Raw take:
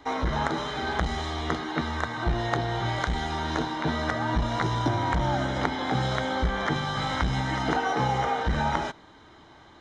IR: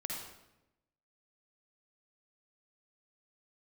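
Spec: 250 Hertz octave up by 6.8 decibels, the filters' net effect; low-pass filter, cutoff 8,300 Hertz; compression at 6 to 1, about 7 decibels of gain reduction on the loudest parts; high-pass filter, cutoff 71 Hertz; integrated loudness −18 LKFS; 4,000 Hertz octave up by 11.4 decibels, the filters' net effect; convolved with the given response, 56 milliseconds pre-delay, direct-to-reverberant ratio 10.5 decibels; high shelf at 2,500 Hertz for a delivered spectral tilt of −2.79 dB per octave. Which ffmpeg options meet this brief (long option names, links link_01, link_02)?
-filter_complex "[0:a]highpass=71,lowpass=8300,equalizer=frequency=250:width_type=o:gain=8.5,highshelf=frequency=2500:gain=7,equalizer=frequency=4000:width_type=o:gain=8,acompressor=threshold=-24dB:ratio=6,asplit=2[link_01][link_02];[1:a]atrim=start_sample=2205,adelay=56[link_03];[link_02][link_03]afir=irnorm=-1:irlink=0,volume=-11.5dB[link_04];[link_01][link_04]amix=inputs=2:normalize=0,volume=9dB"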